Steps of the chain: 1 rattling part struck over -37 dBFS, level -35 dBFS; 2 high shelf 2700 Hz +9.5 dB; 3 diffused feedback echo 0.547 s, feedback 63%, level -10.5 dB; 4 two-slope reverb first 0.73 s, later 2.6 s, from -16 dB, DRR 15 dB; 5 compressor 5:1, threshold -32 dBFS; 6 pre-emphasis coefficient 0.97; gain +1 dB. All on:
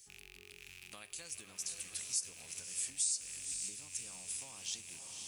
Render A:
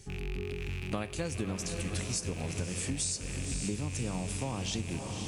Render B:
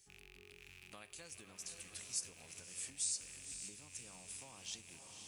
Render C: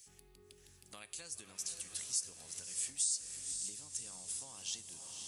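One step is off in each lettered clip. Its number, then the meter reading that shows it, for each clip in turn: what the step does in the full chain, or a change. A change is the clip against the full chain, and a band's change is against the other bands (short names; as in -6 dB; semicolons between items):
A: 6, 8 kHz band -23.0 dB; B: 2, 8 kHz band -6.0 dB; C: 1, 2 kHz band -5.5 dB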